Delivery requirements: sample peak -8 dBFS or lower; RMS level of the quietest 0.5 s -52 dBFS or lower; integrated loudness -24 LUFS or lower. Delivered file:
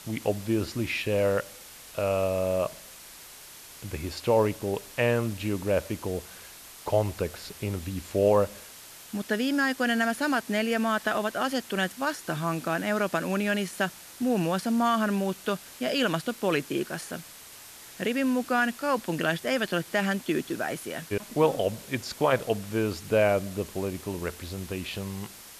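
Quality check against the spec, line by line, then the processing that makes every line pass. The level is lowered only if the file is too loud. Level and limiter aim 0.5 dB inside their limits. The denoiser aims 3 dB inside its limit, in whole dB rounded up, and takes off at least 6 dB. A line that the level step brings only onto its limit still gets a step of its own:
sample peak -11.0 dBFS: OK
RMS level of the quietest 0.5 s -47 dBFS: fail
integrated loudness -28.0 LUFS: OK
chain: denoiser 8 dB, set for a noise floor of -47 dBFS

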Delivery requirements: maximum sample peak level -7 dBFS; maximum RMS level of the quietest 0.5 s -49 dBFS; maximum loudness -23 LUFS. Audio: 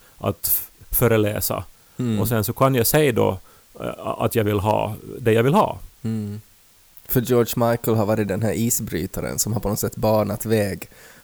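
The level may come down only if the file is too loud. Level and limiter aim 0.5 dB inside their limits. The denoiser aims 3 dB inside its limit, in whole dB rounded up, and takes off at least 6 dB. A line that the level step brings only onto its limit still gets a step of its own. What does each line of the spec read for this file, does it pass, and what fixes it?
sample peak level -5.5 dBFS: fail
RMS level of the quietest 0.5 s -53 dBFS: OK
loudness -21.0 LUFS: fail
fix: gain -2.5 dB

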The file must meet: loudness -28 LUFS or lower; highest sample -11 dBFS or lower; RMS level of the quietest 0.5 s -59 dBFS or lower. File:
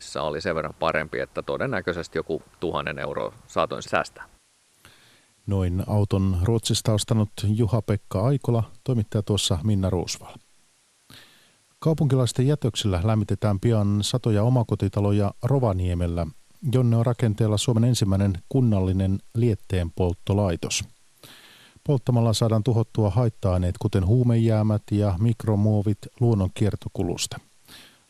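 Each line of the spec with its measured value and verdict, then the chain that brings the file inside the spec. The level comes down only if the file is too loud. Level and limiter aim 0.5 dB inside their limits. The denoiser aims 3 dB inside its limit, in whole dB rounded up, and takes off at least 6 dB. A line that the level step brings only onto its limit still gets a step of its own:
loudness -24.0 LUFS: fail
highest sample -6.5 dBFS: fail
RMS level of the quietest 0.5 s -62 dBFS: OK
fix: gain -4.5 dB; limiter -11.5 dBFS

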